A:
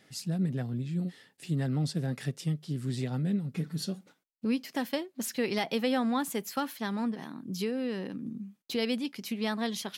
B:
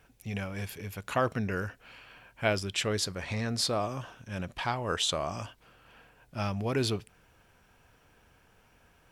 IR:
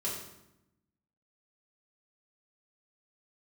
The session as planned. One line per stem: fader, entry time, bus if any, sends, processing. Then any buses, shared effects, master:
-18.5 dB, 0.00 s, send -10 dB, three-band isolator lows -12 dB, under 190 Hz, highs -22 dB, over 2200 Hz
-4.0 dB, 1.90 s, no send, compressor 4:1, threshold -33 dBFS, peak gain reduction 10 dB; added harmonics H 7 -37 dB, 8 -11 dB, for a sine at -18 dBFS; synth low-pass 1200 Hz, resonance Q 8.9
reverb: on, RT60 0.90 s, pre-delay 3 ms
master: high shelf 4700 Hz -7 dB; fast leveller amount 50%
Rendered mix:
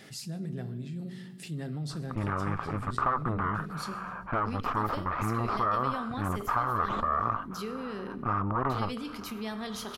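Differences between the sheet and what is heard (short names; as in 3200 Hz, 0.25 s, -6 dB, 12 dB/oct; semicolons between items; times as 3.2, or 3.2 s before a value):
stem A: missing three-band isolator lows -12 dB, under 190 Hz, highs -22 dB, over 2200 Hz; master: missing high shelf 4700 Hz -7 dB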